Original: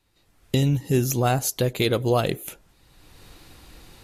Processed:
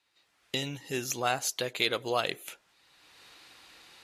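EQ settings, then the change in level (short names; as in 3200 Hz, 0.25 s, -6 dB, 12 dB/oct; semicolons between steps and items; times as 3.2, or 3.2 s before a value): band-pass 2600 Hz, Q 0.53; 0.0 dB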